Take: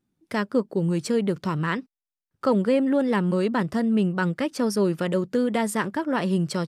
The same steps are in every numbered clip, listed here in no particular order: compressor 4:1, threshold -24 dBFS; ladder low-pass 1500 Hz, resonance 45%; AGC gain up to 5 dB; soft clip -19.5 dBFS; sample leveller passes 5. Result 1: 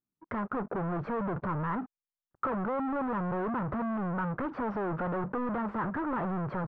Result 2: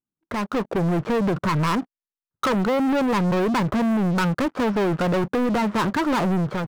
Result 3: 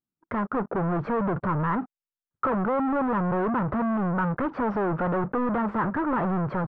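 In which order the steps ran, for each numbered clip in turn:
AGC > soft clip > sample leveller > compressor > ladder low-pass; compressor > ladder low-pass > soft clip > sample leveller > AGC; soft clip > compressor > AGC > sample leveller > ladder low-pass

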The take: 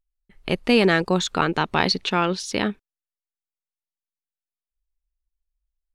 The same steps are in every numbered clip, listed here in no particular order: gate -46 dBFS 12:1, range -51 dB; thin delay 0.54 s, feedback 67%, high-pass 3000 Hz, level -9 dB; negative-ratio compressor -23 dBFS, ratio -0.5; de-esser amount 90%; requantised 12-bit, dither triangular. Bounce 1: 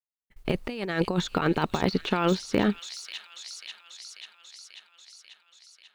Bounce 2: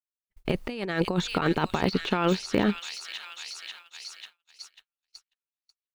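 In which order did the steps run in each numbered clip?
negative-ratio compressor > requantised > gate > thin delay > de-esser; thin delay > requantised > gate > negative-ratio compressor > de-esser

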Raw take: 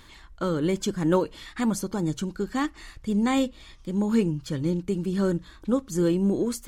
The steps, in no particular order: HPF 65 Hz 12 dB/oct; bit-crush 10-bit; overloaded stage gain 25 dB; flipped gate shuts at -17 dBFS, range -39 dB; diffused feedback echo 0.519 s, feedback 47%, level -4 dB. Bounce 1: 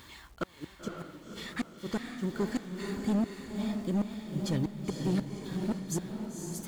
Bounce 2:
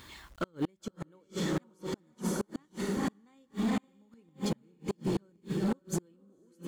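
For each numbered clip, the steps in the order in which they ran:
flipped gate > bit-crush > HPF > overloaded stage > diffused feedback echo; HPF > bit-crush > diffused feedback echo > flipped gate > overloaded stage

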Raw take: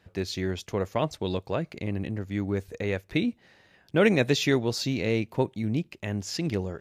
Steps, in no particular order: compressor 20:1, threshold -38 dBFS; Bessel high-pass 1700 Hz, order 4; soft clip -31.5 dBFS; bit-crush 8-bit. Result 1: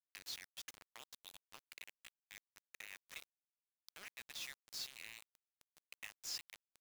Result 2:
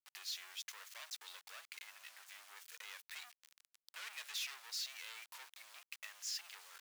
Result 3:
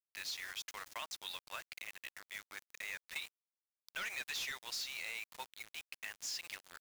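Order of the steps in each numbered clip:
compressor > Bessel high-pass > soft clip > bit-crush; soft clip > bit-crush > compressor > Bessel high-pass; Bessel high-pass > soft clip > bit-crush > compressor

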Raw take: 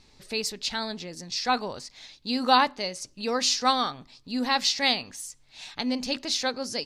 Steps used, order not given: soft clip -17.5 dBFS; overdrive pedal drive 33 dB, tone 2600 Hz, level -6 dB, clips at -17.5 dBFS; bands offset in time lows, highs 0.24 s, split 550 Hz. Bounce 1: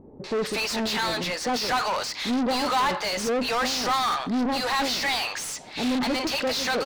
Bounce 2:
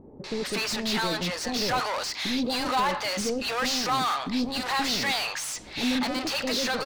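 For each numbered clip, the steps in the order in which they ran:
bands offset in time > soft clip > overdrive pedal; overdrive pedal > bands offset in time > soft clip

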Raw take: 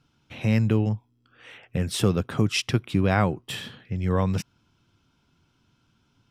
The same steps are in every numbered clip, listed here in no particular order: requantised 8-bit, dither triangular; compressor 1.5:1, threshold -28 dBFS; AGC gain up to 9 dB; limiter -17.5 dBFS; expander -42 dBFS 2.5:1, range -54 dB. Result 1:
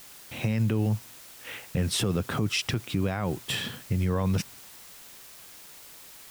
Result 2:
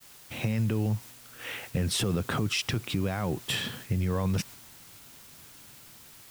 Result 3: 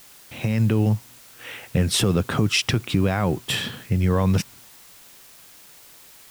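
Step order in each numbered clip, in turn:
expander > AGC > compressor > requantised > limiter; AGC > limiter > requantised > compressor > expander; limiter > compressor > AGC > expander > requantised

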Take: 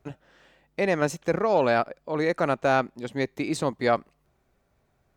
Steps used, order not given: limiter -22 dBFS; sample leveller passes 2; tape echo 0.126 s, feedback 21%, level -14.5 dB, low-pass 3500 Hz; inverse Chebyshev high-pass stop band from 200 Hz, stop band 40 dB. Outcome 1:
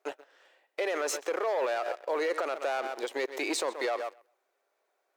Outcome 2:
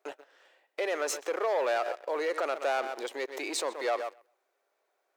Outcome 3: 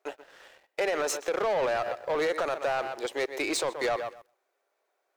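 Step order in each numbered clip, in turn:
tape echo > sample leveller > inverse Chebyshev high-pass > limiter; tape echo > sample leveller > limiter > inverse Chebyshev high-pass; inverse Chebyshev high-pass > tape echo > limiter > sample leveller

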